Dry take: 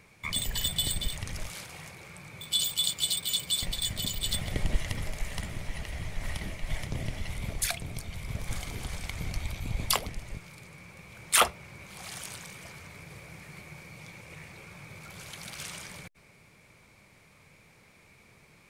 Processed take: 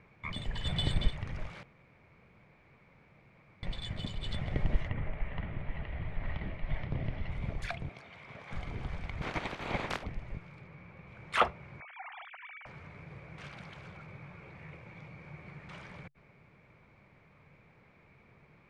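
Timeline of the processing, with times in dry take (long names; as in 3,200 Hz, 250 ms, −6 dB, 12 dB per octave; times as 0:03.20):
0:00.66–0:01.10: clip gain +6 dB
0:01.63–0:03.63: fill with room tone
0:04.87–0:07.30: low-pass filter 2,800 Hz → 5,200 Hz 24 dB per octave
0:07.89–0:08.53: meter weighting curve A
0:09.21–0:10.02: ceiling on every frequency bin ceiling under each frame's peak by 30 dB
0:10.62–0:11.07: high-frequency loss of the air 63 metres
0:11.80–0:12.66: three sine waves on the formant tracks
0:13.38–0:15.69: reverse
whole clip: low-pass filter 2,000 Hz 12 dB per octave; parametric band 140 Hz +3.5 dB 0.25 octaves; level −1.5 dB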